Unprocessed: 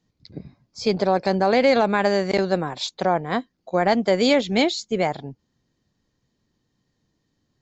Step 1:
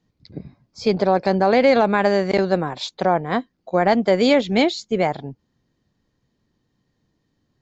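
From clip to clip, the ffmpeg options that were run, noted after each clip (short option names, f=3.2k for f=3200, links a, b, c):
-af "highshelf=f=5.1k:g=-9,volume=2.5dB"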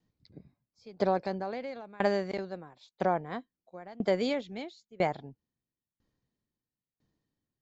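-af "aeval=exprs='val(0)*pow(10,-26*if(lt(mod(1*n/s,1),2*abs(1)/1000),1-mod(1*n/s,1)/(2*abs(1)/1000),(mod(1*n/s,1)-2*abs(1)/1000)/(1-2*abs(1)/1000))/20)':c=same,volume=-7dB"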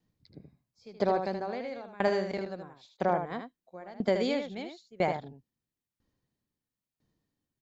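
-af "aecho=1:1:77:0.447"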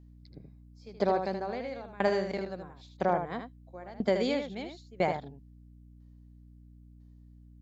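-af "aeval=exprs='val(0)+0.00251*(sin(2*PI*60*n/s)+sin(2*PI*2*60*n/s)/2+sin(2*PI*3*60*n/s)/3+sin(2*PI*4*60*n/s)/4+sin(2*PI*5*60*n/s)/5)':c=same"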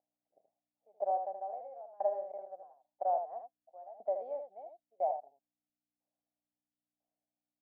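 -af "asuperpass=centerf=690:order=4:qfactor=3.5"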